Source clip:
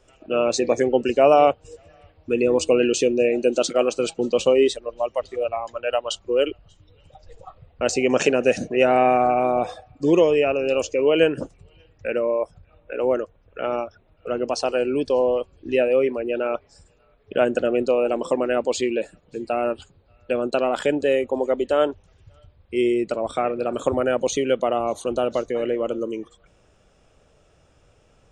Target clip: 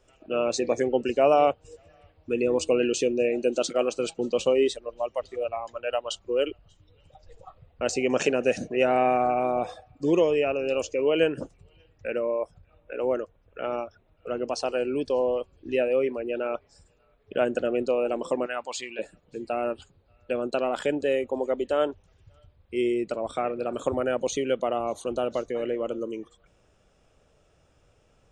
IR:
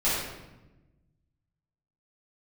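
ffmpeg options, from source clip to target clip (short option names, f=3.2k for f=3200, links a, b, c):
-filter_complex "[0:a]asettb=1/sr,asplit=3[a][b][c];[a]atrim=end=18.464[d];[b]atrim=start=18.46:end=18.99,asetpts=PTS-STARTPTS,afade=t=in:d=0.004:c=qsin,afade=t=out:st=0.526:d=0.004:c=qsin,lowshelf=f=620:t=q:w=1.5:g=-12.5[e];[c]atrim=start=18.986[f];[d][e]acrossfade=d=0.004:c1=hsin:c2=qsin[g];[g][f]acrossfade=d=0.004:c1=qsin:c2=hsin,volume=-5dB"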